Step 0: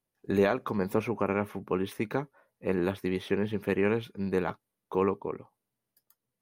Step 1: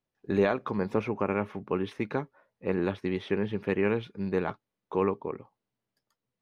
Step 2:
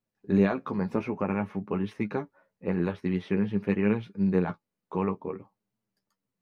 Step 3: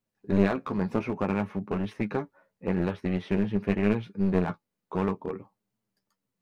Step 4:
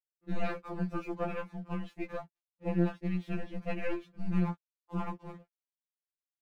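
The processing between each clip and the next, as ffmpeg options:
ffmpeg -i in.wav -af "lowpass=4900" out.wav
ffmpeg -i in.wav -af "equalizer=frequency=190:width_type=o:width=0.81:gain=7,flanger=delay=9.2:depth=3.2:regen=33:speed=0.52:shape=triangular,equalizer=frequency=3400:width_type=o:width=0.26:gain=-5,volume=2dB" out.wav
ffmpeg -i in.wav -af "aeval=exprs='clip(val(0),-1,0.0376)':channel_layout=same,volume=1.5dB" out.wav
ffmpeg -i in.wav -af "aeval=exprs='sgn(val(0))*max(abs(val(0))-0.00266,0)':channel_layout=same,aeval=exprs='(tanh(4.47*val(0)+0.75)-tanh(0.75))/4.47':channel_layout=same,afftfilt=real='re*2.83*eq(mod(b,8),0)':imag='im*2.83*eq(mod(b,8),0)':win_size=2048:overlap=0.75,volume=-1dB" out.wav

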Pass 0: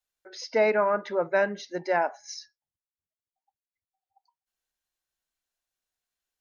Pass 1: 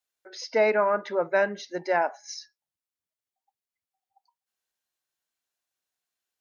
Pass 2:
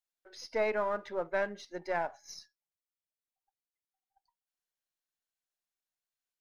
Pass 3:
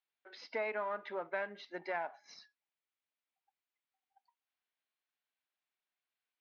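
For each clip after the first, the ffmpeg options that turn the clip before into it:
ffmpeg -i in.wav -af "highpass=frequency=170:poles=1,volume=1dB" out.wav
ffmpeg -i in.wav -af "aeval=exprs='if(lt(val(0),0),0.708*val(0),val(0))':channel_layout=same,volume=-7.5dB" out.wav
ffmpeg -i in.wav -af "highpass=280,equalizer=frequency=360:width_type=q:width=4:gain=-4,equalizer=frequency=520:width_type=q:width=4:gain=-6,equalizer=frequency=2300:width_type=q:width=4:gain=3,lowpass=frequency=3800:width=0.5412,lowpass=frequency=3800:width=1.3066,acompressor=threshold=-41dB:ratio=2.5,volume=3.5dB" out.wav

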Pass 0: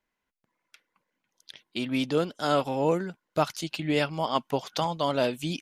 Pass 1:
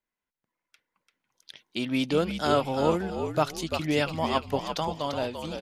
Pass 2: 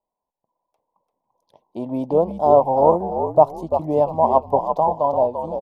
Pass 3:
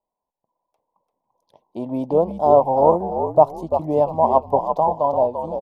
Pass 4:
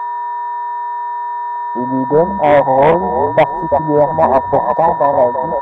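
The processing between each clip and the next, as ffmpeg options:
ffmpeg -i in.wav -filter_complex "[0:a]dynaudnorm=framelen=340:gausssize=7:maxgain=10dB,asplit=2[link_01][link_02];[link_02]asplit=4[link_03][link_04][link_05][link_06];[link_03]adelay=342,afreqshift=-62,volume=-7dB[link_07];[link_04]adelay=684,afreqshift=-124,volume=-17.5dB[link_08];[link_05]adelay=1026,afreqshift=-186,volume=-27.9dB[link_09];[link_06]adelay=1368,afreqshift=-248,volume=-38.4dB[link_10];[link_07][link_08][link_09][link_10]amix=inputs=4:normalize=0[link_11];[link_01][link_11]amix=inputs=2:normalize=0,volume=-8dB" out.wav
ffmpeg -i in.wav -af "firequalizer=gain_entry='entry(310,0);entry(620,12);entry(990,11);entry(1400,-27);entry(13000,-13)':delay=0.05:min_phase=1,volume=2dB" out.wav
ffmpeg -i in.wav -af anull out.wav
ffmpeg -i in.wav -af "volume=12dB,asoftclip=hard,volume=-12dB,aeval=exprs='val(0)+0.0562*sin(2*PI*960*n/s)':channel_layout=same,afwtdn=0.0447,volume=7dB" out.wav

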